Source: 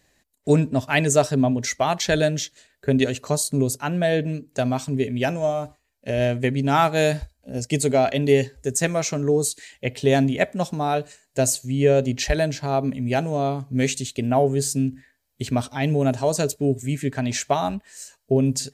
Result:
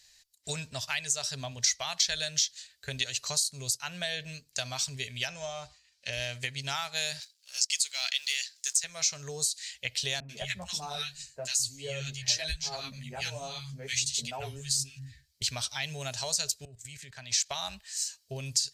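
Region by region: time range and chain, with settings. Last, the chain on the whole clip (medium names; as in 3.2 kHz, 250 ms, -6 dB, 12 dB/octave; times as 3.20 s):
5.27–6.13 s: distance through air 71 m + tape noise reduction on one side only encoder only
7.20–8.84 s: companding laws mixed up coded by A + high-pass 1.3 kHz + peaking EQ 5.1 kHz +7.5 dB 2.6 oct
10.20–15.42 s: bass shelf 260 Hz +8.5 dB + three bands offset in time mids, highs, lows 90/210 ms, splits 160/1300 Hz + three-phase chorus
16.65–17.51 s: level held to a coarse grid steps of 16 dB + three bands expanded up and down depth 40%
whole clip: amplifier tone stack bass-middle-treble 10-0-10; compression 5:1, threshold -34 dBFS; peaking EQ 4.8 kHz +13 dB 1.4 oct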